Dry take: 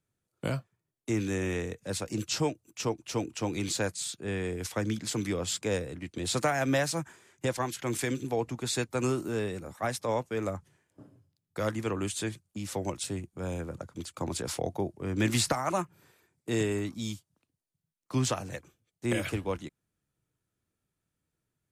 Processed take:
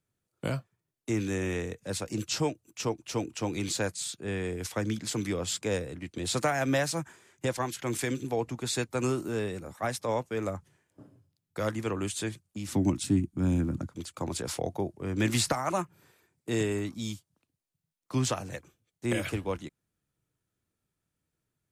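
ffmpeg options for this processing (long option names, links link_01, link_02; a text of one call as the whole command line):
ffmpeg -i in.wav -filter_complex "[0:a]asettb=1/sr,asplit=3[link_01][link_02][link_03];[link_01]atrim=end=12.684[link_04];[link_02]atrim=start=12.68:end=13.89,asetpts=PTS-STARTPTS,afade=type=in:duration=0.004:curve=qsin,afade=type=out:start_time=1.206:duration=0.004:curve=qsin,lowshelf=frequency=370:width_type=q:width=3:gain=8[link_05];[link_03]atrim=start=13.886[link_06];[link_04][link_05]acrossfade=duration=0.004:curve1=hsin:curve2=qsin[link_07];[link_07][link_06]acrossfade=duration=0.004:curve1=qsin:curve2=hsin" out.wav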